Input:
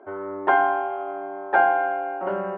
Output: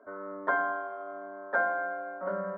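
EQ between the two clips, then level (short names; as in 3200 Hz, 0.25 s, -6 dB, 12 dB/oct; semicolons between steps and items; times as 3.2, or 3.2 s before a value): fixed phaser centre 540 Hz, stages 8; -4.0 dB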